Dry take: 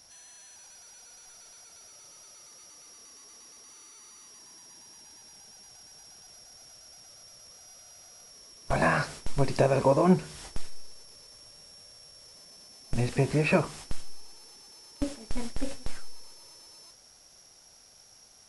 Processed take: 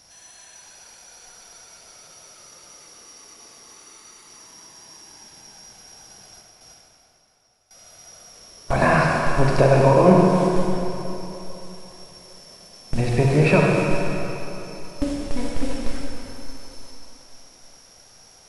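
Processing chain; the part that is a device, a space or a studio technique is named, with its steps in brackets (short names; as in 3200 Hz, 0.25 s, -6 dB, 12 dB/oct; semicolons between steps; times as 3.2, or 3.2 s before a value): 6.41–7.71 gate with hold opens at -42 dBFS; swimming-pool hall (reverb RT60 3.4 s, pre-delay 38 ms, DRR -1.5 dB; high shelf 5000 Hz -5.5 dB); gain +5.5 dB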